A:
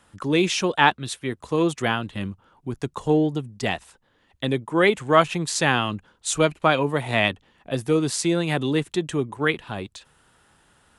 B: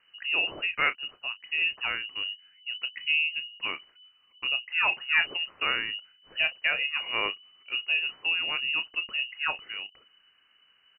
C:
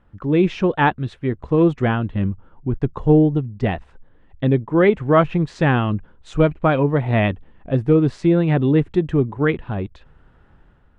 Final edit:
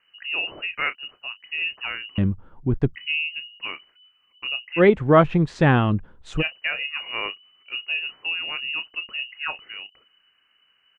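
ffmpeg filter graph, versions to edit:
-filter_complex "[2:a]asplit=2[a][b];[1:a]asplit=3[c][d][e];[c]atrim=end=2.182[f];[a]atrim=start=2.178:end=2.952[g];[d]atrim=start=2.948:end=4.82[h];[b]atrim=start=4.76:end=6.43[i];[e]atrim=start=6.37[j];[f][g]acrossfade=d=0.004:c1=hsin:c2=hsin[k];[k][h]acrossfade=d=0.004:c1=hsin:c2=hsin[l];[l][i]acrossfade=d=0.06:c1=tri:c2=tri[m];[m][j]acrossfade=d=0.06:c1=tri:c2=tri"

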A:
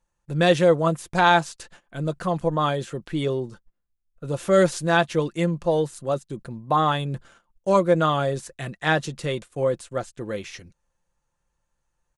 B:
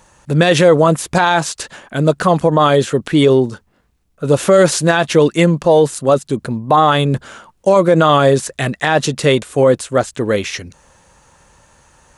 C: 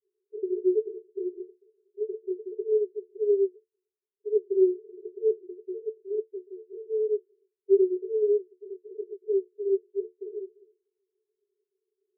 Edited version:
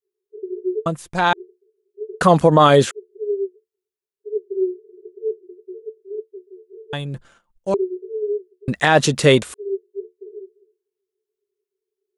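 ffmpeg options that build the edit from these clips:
-filter_complex "[0:a]asplit=2[a][b];[1:a]asplit=2[c][d];[2:a]asplit=5[e][f][g][h][i];[e]atrim=end=0.862[j];[a]atrim=start=0.858:end=1.332[k];[f]atrim=start=1.328:end=2.212[l];[c]atrim=start=2.208:end=2.912[m];[g]atrim=start=2.908:end=6.932[n];[b]atrim=start=6.928:end=7.742[o];[h]atrim=start=7.738:end=8.682[p];[d]atrim=start=8.678:end=9.542[q];[i]atrim=start=9.538[r];[j][k]acrossfade=d=0.004:c1=hsin:c2=hsin[s];[s][l]acrossfade=d=0.004:c1=hsin:c2=hsin[t];[t][m]acrossfade=d=0.004:c1=hsin:c2=hsin[u];[u][n]acrossfade=d=0.004:c1=hsin:c2=hsin[v];[v][o]acrossfade=d=0.004:c1=hsin:c2=hsin[w];[w][p]acrossfade=d=0.004:c1=hsin:c2=hsin[x];[x][q]acrossfade=d=0.004:c1=hsin:c2=hsin[y];[y][r]acrossfade=d=0.004:c1=hsin:c2=hsin"

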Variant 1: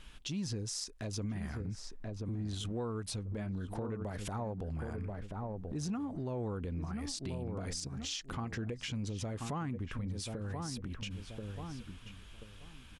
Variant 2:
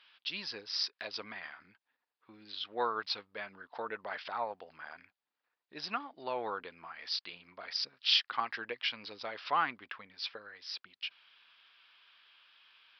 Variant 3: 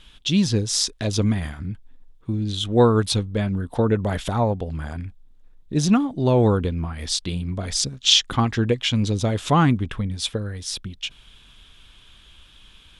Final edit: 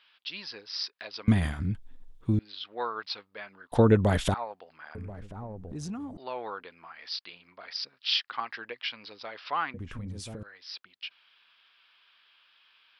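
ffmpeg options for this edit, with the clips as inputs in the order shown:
-filter_complex "[2:a]asplit=2[a][b];[0:a]asplit=2[c][d];[1:a]asplit=5[e][f][g][h][i];[e]atrim=end=1.282[j];[a]atrim=start=1.278:end=2.392[k];[f]atrim=start=2.388:end=3.722[l];[b]atrim=start=3.718:end=4.342[m];[g]atrim=start=4.338:end=4.952[n];[c]atrim=start=4.948:end=6.172[o];[h]atrim=start=6.168:end=9.742[p];[d]atrim=start=9.738:end=10.432[q];[i]atrim=start=10.428[r];[j][k]acrossfade=d=0.004:c1=hsin:c2=hsin[s];[s][l]acrossfade=d=0.004:c1=hsin:c2=hsin[t];[t][m]acrossfade=d=0.004:c1=hsin:c2=hsin[u];[u][n]acrossfade=d=0.004:c1=hsin:c2=hsin[v];[v][o]acrossfade=d=0.004:c1=hsin:c2=hsin[w];[w][p]acrossfade=d=0.004:c1=hsin:c2=hsin[x];[x][q]acrossfade=d=0.004:c1=hsin:c2=hsin[y];[y][r]acrossfade=d=0.004:c1=hsin:c2=hsin"

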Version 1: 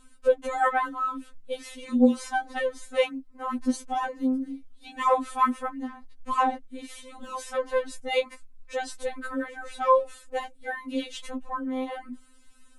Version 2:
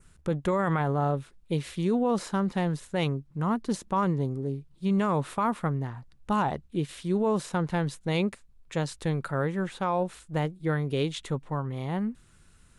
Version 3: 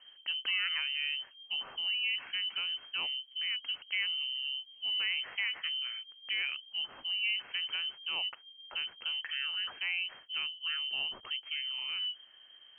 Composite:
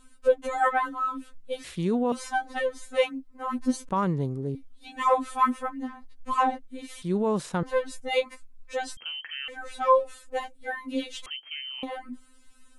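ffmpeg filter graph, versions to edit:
-filter_complex "[1:a]asplit=3[a][b][c];[2:a]asplit=2[d][e];[0:a]asplit=6[f][g][h][i][j][k];[f]atrim=end=1.642[l];[a]atrim=start=1.638:end=2.122[m];[g]atrim=start=2.118:end=3.892[n];[b]atrim=start=3.888:end=4.552[o];[h]atrim=start=4.548:end=7.022[p];[c]atrim=start=7.018:end=7.632[q];[i]atrim=start=7.628:end=8.972[r];[d]atrim=start=8.968:end=9.482[s];[j]atrim=start=9.478:end=11.262[t];[e]atrim=start=11.258:end=11.832[u];[k]atrim=start=11.828[v];[l][m]acrossfade=d=0.004:c1=hsin:c2=hsin[w];[w][n]acrossfade=d=0.004:c1=hsin:c2=hsin[x];[x][o]acrossfade=d=0.004:c1=hsin:c2=hsin[y];[y][p]acrossfade=d=0.004:c1=hsin:c2=hsin[z];[z][q]acrossfade=d=0.004:c1=hsin:c2=hsin[aa];[aa][r]acrossfade=d=0.004:c1=hsin:c2=hsin[ab];[ab][s]acrossfade=d=0.004:c1=hsin:c2=hsin[ac];[ac][t]acrossfade=d=0.004:c1=hsin:c2=hsin[ad];[ad][u]acrossfade=d=0.004:c1=hsin:c2=hsin[ae];[ae][v]acrossfade=d=0.004:c1=hsin:c2=hsin"

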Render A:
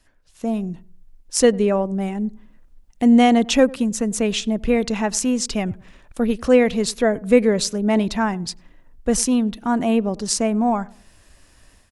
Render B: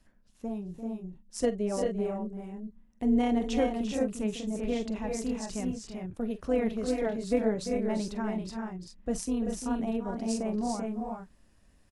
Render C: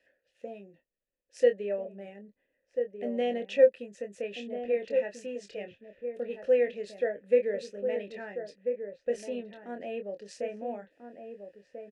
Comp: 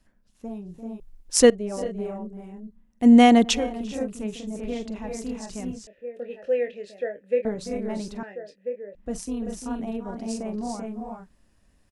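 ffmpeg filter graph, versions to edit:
-filter_complex "[0:a]asplit=2[a][b];[2:a]asplit=2[c][d];[1:a]asplit=5[e][f][g][h][i];[e]atrim=end=1.002[j];[a]atrim=start=0.998:end=1.502[k];[f]atrim=start=1.498:end=3.07[l];[b]atrim=start=3.01:end=3.57[m];[g]atrim=start=3.51:end=5.872[n];[c]atrim=start=5.868:end=7.452[o];[h]atrim=start=7.448:end=8.232[p];[d]atrim=start=8.228:end=8.952[q];[i]atrim=start=8.948[r];[j][k]acrossfade=d=0.004:c1=hsin:c2=hsin[s];[s][l]acrossfade=d=0.004:c1=hsin:c2=hsin[t];[t][m]acrossfade=d=0.06:c1=tri:c2=tri[u];[u][n]acrossfade=d=0.06:c1=tri:c2=tri[v];[v][o]acrossfade=d=0.004:c1=hsin:c2=hsin[w];[w][p]acrossfade=d=0.004:c1=hsin:c2=hsin[x];[x][q]acrossfade=d=0.004:c1=hsin:c2=hsin[y];[y][r]acrossfade=d=0.004:c1=hsin:c2=hsin"

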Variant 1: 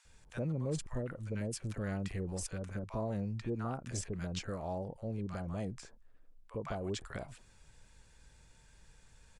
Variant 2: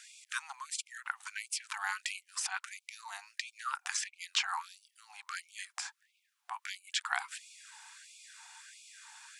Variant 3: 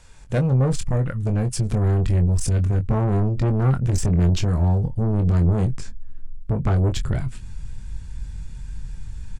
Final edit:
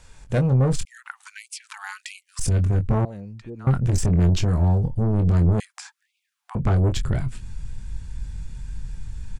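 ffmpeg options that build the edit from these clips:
-filter_complex "[1:a]asplit=2[a][b];[2:a]asplit=4[c][d][e][f];[c]atrim=end=0.852[g];[a]atrim=start=0.848:end=2.392[h];[d]atrim=start=2.388:end=3.052[i];[0:a]atrim=start=3.048:end=3.672[j];[e]atrim=start=3.668:end=5.602[k];[b]atrim=start=5.598:end=6.552[l];[f]atrim=start=6.548[m];[g][h]acrossfade=d=0.004:c1=hsin:c2=hsin[n];[n][i]acrossfade=d=0.004:c1=hsin:c2=hsin[o];[o][j]acrossfade=d=0.004:c1=hsin:c2=hsin[p];[p][k]acrossfade=d=0.004:c1=hsin:c2=hsin[q];[q][l]acrossfade=d=0.004:c1=hsin:c2=hsin[r];[r][m]acrossfade=d=0.004:c1=hsin:c2=hsin"

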